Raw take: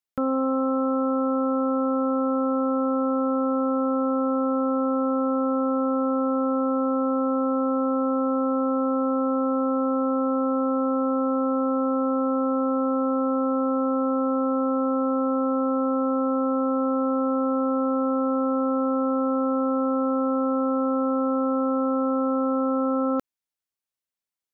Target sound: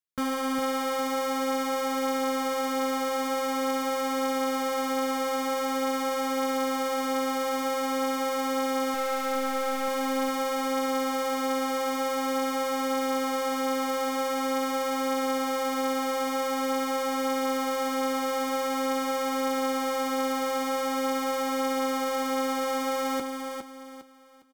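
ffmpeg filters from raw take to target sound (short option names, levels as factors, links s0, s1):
-filter_complex "[0:a]asettb=1/sr,asplit=3[s0][s1][s2];[s0]atrim=end=8.944[s3];[s1]atrim=start=8.94:end=9.88,asetpts=PTS-STARTPTS,afade=t=in:d=0.004:c=qsin,afade=t=out:st=0.936:d=0.004:c=qsin,asplit=2[s4][s5];[s5]highpass=f=720:p=1,volume=8.91,asoftclip=type=tanh:threshold=0.126[s6];[s4][s6]amix=inputs=2:normalize=0,lowpass=f=1100:p=1,volume=0.501[s7];[s2]atrim=start=9.876[s8];[s3][s7]acrossfade=d=0.004:c1=hsin:c2=qsin[s9];[s9][s8]acrossfade=d=0.004:c1=qsin:c2=hsin,acrossover=split=690[s10][s11];[s10]acrusher=samples=33:mix=1:aa=0.000001[s12];[s12][s11]amix=inputs=2:normalize=0,aecho=1:1:407|814|1221|1628:0.501|0.155|0.0482|0.0149,flanger=delay=6.9:depth=7.3:regen=-41:speed=0.46:shape=triangular"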